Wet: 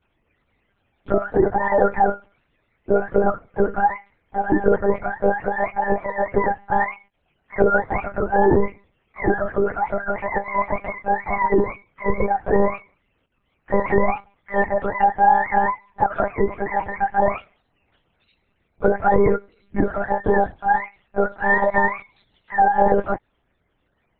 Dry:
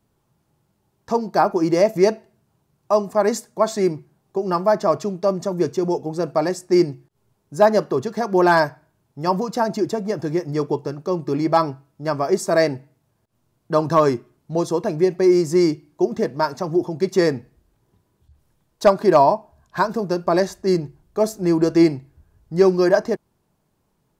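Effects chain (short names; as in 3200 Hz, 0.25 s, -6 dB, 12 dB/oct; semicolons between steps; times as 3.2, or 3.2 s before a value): spectrum mirrored in octaves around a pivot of 550 Hz; limiter -11.5 dBFS, peak gain reduction 8.5 dB; monotone LPC vocoder at 8 kHz 200 Hz; gain +4 dB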